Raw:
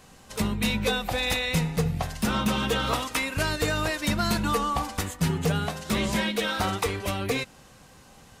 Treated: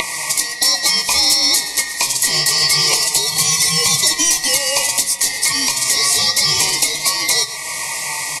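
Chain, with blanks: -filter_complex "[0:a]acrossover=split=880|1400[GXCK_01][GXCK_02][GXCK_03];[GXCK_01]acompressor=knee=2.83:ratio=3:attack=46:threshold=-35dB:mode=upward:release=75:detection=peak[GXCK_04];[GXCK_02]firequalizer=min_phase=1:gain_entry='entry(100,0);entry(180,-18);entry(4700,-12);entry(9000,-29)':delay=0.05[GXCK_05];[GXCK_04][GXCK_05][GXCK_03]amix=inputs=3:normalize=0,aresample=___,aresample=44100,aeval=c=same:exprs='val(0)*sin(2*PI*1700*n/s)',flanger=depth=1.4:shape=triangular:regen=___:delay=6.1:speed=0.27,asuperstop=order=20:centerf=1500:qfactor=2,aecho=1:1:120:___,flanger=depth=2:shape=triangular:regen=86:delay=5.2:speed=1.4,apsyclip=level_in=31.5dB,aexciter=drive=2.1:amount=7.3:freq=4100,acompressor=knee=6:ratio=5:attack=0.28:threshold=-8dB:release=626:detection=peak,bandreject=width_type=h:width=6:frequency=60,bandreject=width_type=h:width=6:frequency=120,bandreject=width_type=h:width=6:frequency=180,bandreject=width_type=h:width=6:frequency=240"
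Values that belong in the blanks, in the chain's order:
22050, 59, 0.126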